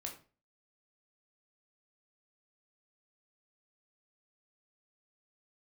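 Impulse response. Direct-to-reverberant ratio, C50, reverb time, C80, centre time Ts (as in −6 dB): 1.0 dB, 9.0 dB, 0.35 s, 14.0 dB, 19 ms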